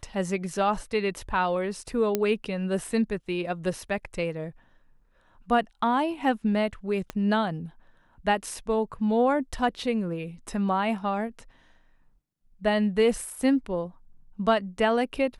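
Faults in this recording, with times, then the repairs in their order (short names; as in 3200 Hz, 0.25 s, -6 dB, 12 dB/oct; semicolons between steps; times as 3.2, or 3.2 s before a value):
2.15 pop -10 dBFS
7.1 pop -18 dBFS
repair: de-click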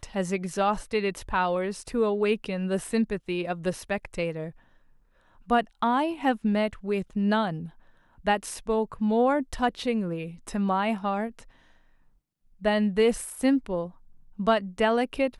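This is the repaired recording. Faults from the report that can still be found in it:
7.1 pop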